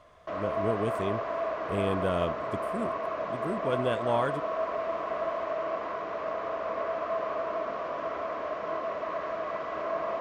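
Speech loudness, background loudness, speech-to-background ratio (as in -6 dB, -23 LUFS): -33.0 LUFS, -32.5 LUFS, -0.5 dB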